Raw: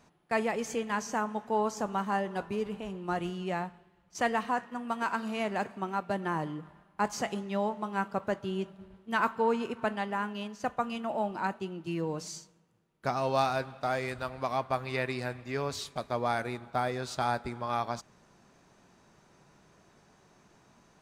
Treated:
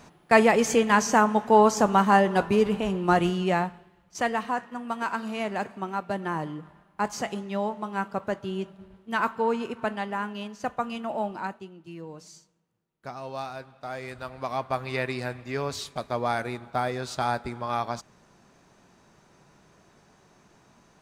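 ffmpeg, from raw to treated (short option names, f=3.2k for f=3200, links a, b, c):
-af "volume=22dB,afade=t=out:st=3.05:d=1.22:silence=0.334965,afade=t=out:st=11.25:d=0.46:silence=0.334965,afade=t=in:st=13.75:d=1.12:silence=0.298538"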